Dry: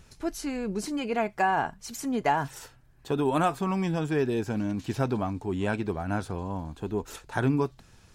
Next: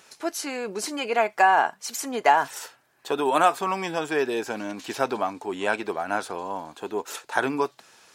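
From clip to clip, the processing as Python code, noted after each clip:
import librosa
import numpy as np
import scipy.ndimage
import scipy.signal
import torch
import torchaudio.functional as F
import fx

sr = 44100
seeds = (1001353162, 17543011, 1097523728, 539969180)

y = scipy.signal.sosfilt(scipy.signal.butter(2, 510.0, 'highpass', fs=sr, output='sos'), x)
y = y * librosa.db_to_amplitude(7.5)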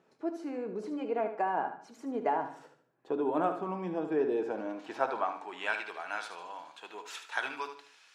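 y = fx.filter_sweep_bandpass(x, sr, from_hz=270.0, to_hz=2700.0, start_s=4.05, end_s=5.87, q=0.91)
y = fx.echo_feedback(y, sr, ms=75, feedback_pct=36, wet_db=-9.5)
y = fx.room_shoebox(y, sr, seeds[0], volume_m3=380.0, walls='furnished', distance_m=0.6)
y = y * librosa.db_to_amplitude(-3.5)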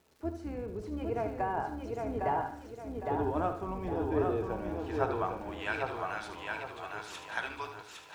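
y = fx.octave_divider(x, sr, octaves=2, level_db=-1.0)
y = fx.dmg_crackle(y, sr, seeds[1], per_s=510.0, level_db=-53.0)
y = fx.echo_feedback(y, sr, ms=808, feedback_pct=37, wet_db=-3.5)
y = y * librosa.db_to_amplitude(-2.5)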